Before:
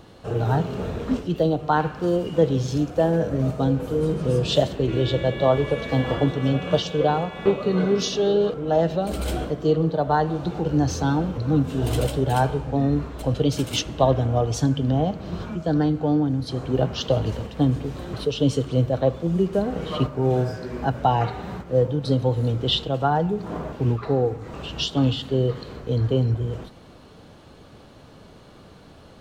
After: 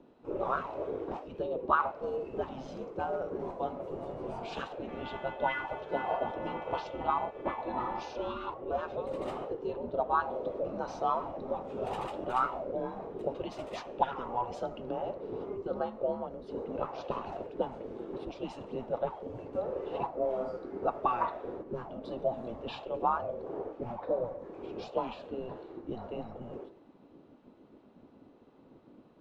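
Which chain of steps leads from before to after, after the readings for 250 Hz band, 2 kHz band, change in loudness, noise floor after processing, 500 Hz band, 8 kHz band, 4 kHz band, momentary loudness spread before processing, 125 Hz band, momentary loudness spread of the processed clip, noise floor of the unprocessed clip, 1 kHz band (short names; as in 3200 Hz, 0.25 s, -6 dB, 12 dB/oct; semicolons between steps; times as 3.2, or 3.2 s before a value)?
-18.0 dB, -8.0 dB, -12.5 dB, -58 dBFS, -11.5 dB, under -25 dB, -21.0 dB, 6 LU, -26.5 dB, 10 LU, -47 dBFS, -6.0 dB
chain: spectral gate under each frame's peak -10 dB weak; auto-wah 480–2900 Hz, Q 5, up, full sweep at -19.5 dBFS; frequency shift -240 Hz; gain +8.5 dB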